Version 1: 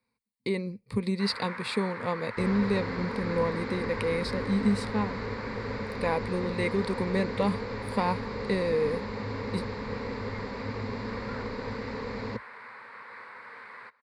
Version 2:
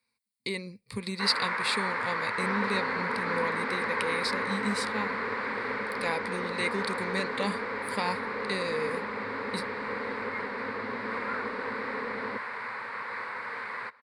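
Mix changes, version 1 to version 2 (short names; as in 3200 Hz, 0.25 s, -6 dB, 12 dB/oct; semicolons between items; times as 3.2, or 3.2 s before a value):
speech: add tilt shelf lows -7.5 dB, about 1400 Hz; first sound +9.0 dB; second sound: add three-band isolator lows -21 dB, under 200 Hz, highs -22 dB, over 4000 Hz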